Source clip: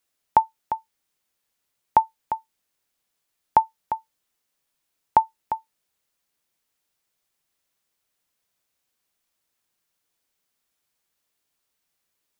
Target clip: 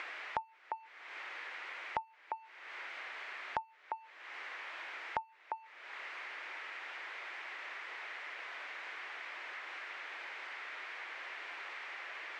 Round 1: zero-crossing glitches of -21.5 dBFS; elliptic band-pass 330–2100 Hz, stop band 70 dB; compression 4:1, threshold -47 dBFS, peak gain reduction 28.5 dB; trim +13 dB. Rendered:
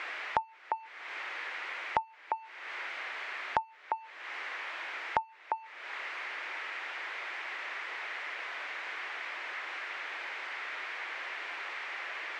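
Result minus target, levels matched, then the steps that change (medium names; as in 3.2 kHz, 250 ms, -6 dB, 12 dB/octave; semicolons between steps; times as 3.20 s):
compression: peak gain reduction -7 dB
change: compression 4:1, threshold -56.5 dBFS, peak gain reduction 35.5 dB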